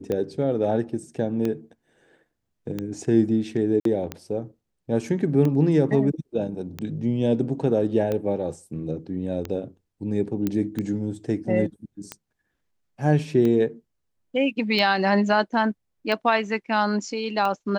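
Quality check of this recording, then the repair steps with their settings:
scratch tick 45 rpm −15 dBFS
0:03.80–0:03.85: drop-out 53 ms
0:10.47: click −12 dBFS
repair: click removal
repair the gap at 0:03.80, 53 ms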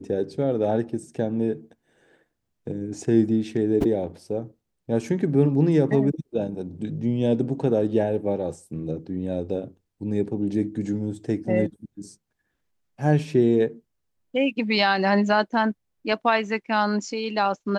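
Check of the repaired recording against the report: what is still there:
0:10.47: click

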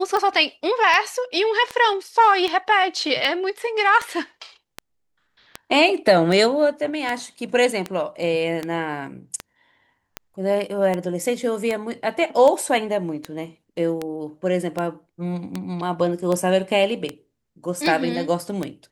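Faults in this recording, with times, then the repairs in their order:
scratch tick 78 rpm −11 dBFS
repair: click removal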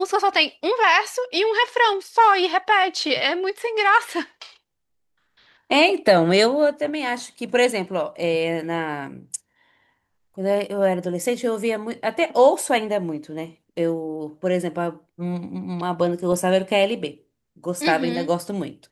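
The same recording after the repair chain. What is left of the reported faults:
none of them is left

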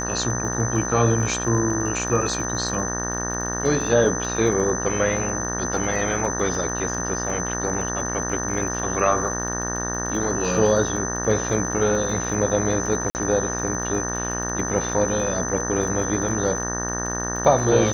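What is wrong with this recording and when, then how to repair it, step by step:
mains buzz 60 Hz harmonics 31 −29 dBFS
surface crackle 35 per second −30 dBFS
whistle 6,100 Hz −28 dBFS
0:13.10–0:13.15: drop-out 49 ms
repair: click removal
hum removal 60 Hz, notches 31
notch filter 6,100 Hz, Q 30
repair the gap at 0:13.10, 49 ms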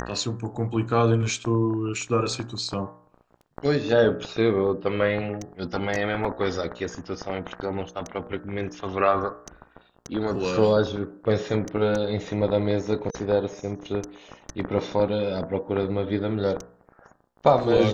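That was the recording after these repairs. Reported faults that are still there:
none of them is left

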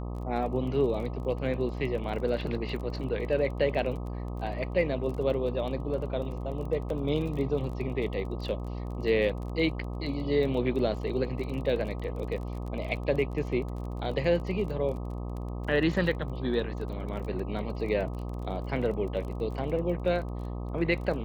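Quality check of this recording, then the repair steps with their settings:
mains buzz 60 Hz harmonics 21 −35 dBFS
surface crackle 27 per second −37 dBFS
0:06.90: drop-out 2.4 ms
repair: click removal
hum removal 60 Hz, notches 21
repair the gap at 0:06.90, 2.4 ms

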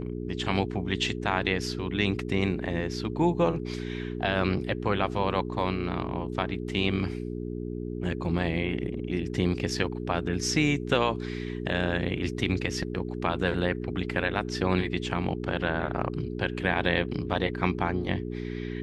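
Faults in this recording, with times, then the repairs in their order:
mains hum 60 Hz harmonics 7 −34 dBFS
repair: hum removal 60 Hz, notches 7

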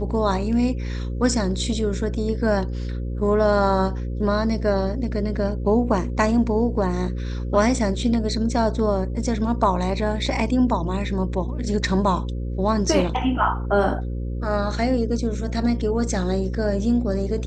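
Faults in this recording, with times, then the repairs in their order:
mains buzz 60 Hz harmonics 9 −27 dBFS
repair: hum removal 60 Hz, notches 9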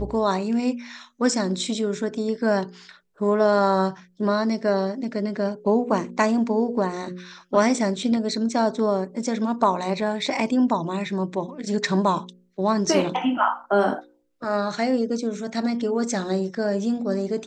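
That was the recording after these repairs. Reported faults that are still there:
none of them is left

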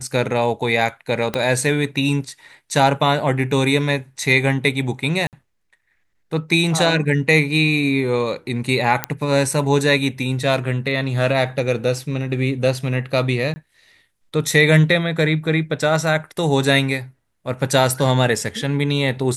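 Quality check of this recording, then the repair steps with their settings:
0:01.34: click −7 dBFS
0:05.27–0:05.33: drop-out 58 ms
0:09.04: click −3 dBFS
0:13.54–0:13.56: drop-out 20 ms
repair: click removal
repair the gap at 0:05.27, 58 ms
repair the gap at 0:13.54, 20 ms

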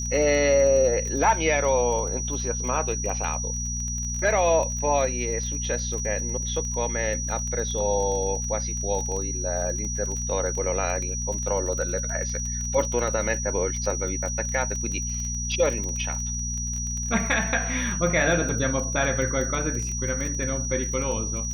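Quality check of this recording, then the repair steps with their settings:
surface crackle 23 per second −29 dBFS
mains hum 60 Hz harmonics 4 −31 dBFS
whistle 5,800 Hz −30 dBFS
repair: click removal
hum removal 60 Hz, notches 4
notch filter 5,800 Hz, Q 30

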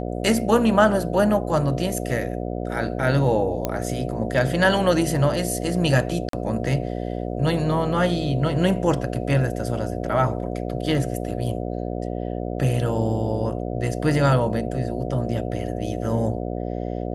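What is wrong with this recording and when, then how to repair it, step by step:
mains buzz 60 Hz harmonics 12 −28 dBFS
0:03.65: click −9 dBFS
0:06.29–0:06.33: drop-out 43 ms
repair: click removal
hum removal 60 Hz, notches 12
repair the gap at 0:06.29, 43 ms

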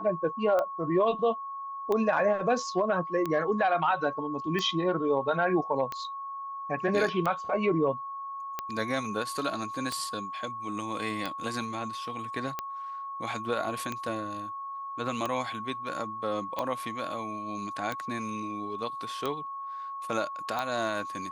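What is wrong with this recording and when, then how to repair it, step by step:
scratch tick 45 rpm −17 dBFS
whistle 1,100 Hz −35 dBFS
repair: click removal
notch filter 1,100 Hz, Q 30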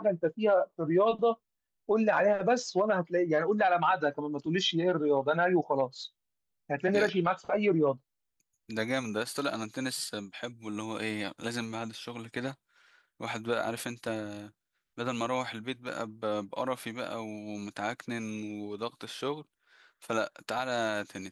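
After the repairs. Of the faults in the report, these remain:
none of them is left

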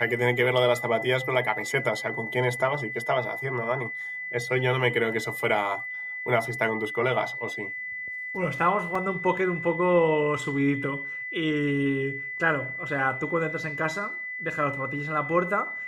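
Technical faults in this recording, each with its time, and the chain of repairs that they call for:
whistle 2,000 Hz −32 dBFS
0:08.95: drop-out 3.9 ms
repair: notch filter 2,000 Hz, Q 30
repair the gap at 0:08.95, 3.9 ms

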